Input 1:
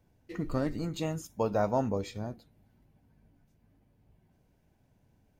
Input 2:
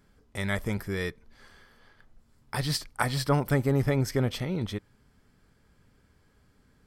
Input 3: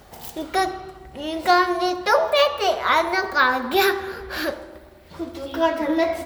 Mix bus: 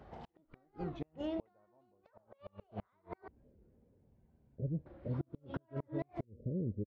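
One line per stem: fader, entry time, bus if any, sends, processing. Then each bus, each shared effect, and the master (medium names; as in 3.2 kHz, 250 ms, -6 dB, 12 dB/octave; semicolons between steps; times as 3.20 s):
-2.5 dB, 0.00 s, no bus, no send, bass shelf 210 Hz -6.5 dB
-3.5 dB, 2.05 s, bus A, no send, steep low-pass 590 Hz 96 dB/octave
-5.0 dB, 0.00 s, muted 3.28–4.87 s, bus A, no send, peak limiter -14 dBFS, peak gain reduction 9 dB
bus A: 0.0 dB, high-pass 46 Hz 24 dB/octave; compression 8:1, threshold -31 dBFS, peak gain reduction 10.5 dB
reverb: none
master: inverted gate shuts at -25 dBFS, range -37 dB; tape spacing loss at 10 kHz 43 dB; warped record 45 rpm, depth 160 cents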